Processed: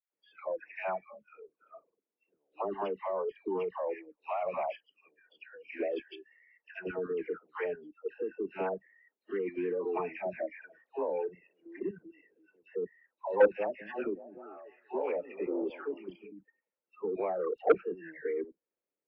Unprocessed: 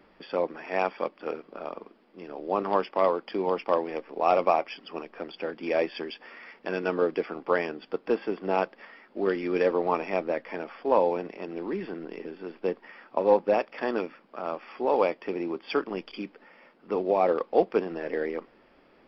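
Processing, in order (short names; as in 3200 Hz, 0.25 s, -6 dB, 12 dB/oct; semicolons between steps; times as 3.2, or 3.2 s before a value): spectral noise reduction 28 dB; speaker cabinet 110–2700 Hz, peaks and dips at 130 Hz -4 dB, 230 Hz -6 dB, 470 Hz +5 dB, 780 Hz -4 dB, 1200 Hz -5 dB, 1800 Hz -3 dB; 13.48–16.24 delay with a stepping band-pass 0.193 s, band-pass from 210 Hz, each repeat 0.7 oct, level -9 dB; level quantiser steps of 16 dB; dispersion lows, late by 0.14 s, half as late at 1000 Hz; core saturation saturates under 730 Hz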